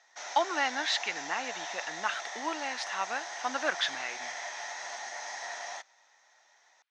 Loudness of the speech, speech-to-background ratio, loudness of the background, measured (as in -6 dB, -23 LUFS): -33.0 LUFS, 6.0 dB, -39.0 LUFS